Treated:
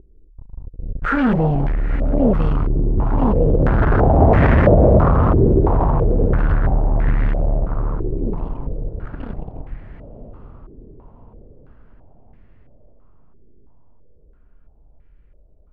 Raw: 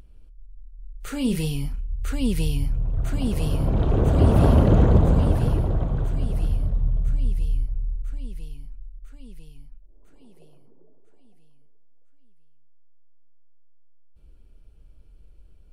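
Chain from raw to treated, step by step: in parallel at -4 dB: fuzz box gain 39 dB, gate -37 dBFS; on the sum: diffused feedback echo 0.923 s, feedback 51%, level -12 dB; stepped low-pass 3 Hz 390–1900 Hz; gain -1.5 dB

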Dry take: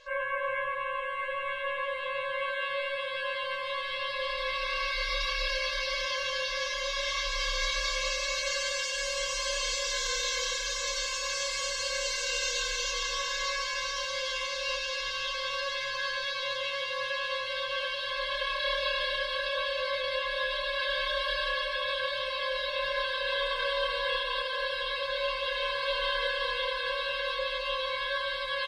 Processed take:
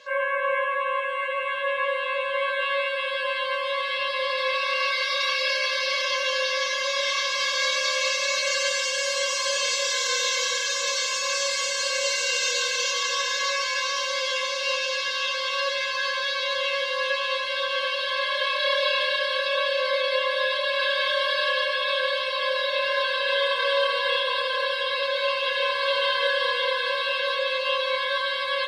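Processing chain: steep high-pass 150 Hz 36 dB/oct; on a send: reverb RT60 0.40 s, pre-delay 46 ms, DRR 9 dB; on the sum: gain +6 dB

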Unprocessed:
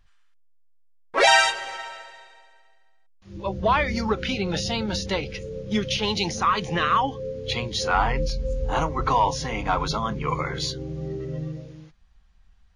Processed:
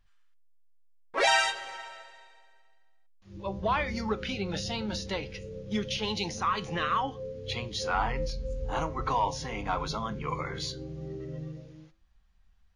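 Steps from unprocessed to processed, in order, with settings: flange 1 Hz, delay 9.1 ms, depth 1.1 ms, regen +85%; gain -2.5 dB

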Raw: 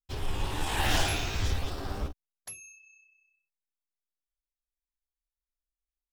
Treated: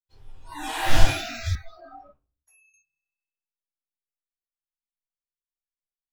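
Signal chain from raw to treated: reverb RT60 0.45 s, pre-delay 6 ms, DRR -5.5 dB; spectral noise reduction 26 dB; 1.55–2.74 three-band isolator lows -14 dB, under 560 Hz, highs -16 dB, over 2400 Hz; gain -5.5 dB

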